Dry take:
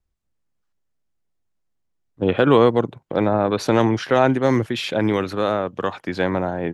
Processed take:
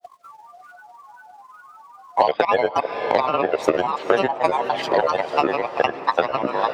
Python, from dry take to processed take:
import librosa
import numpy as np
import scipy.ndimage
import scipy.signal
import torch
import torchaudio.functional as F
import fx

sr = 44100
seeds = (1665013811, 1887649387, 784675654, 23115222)

p1 = fx.band_invert(x, sr, width_hz=1000)
p2 = fx.granulator(p1, sr, seeds[0], grain_ms=100.0, per_s=20.0, spray_ms=14.0, spread_st=7)
p3 = fx.transient(p2, sr, attack_db=9, sustain_db=-9)
p4 = scipy.signal.sosfilt(scipy.signal.butter(2, 130.0, 'highpass', fs=sr, output='sos'), p3)
p5 = p4 + fx.echo_diffused(p4, sr, ms=473, feedback_pct=51, wet_db=-15.5, dry=0)
p6 = fx.band_squash(p5, sr, depth_pct=100)
y = p6 * librosa.db_to_amplitude(-4.5)